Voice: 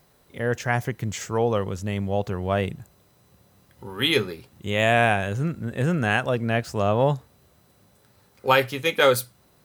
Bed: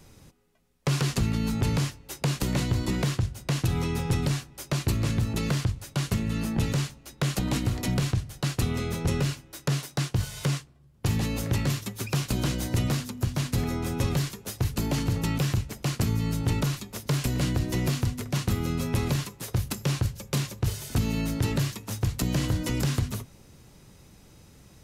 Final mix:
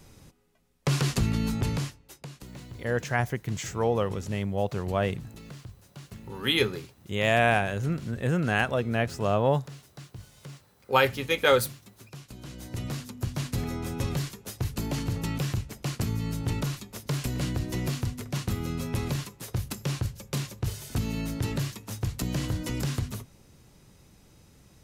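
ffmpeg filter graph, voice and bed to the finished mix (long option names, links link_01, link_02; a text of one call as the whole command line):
ffmpeg -i stem1.wav -i stem2.wav -filter_complex "[0:a]adelay=2450,volume=-3dB[link_01];[1:a]volume=14dB,afade=type=out:start_time=1.4:duration=0.89:silence=0.133352,afade=type=in:start_time=12.41:duration=0.89:silence=0.199526[link_02];[link_01][link_02]amix=inputs=2:normalize=0" out.wav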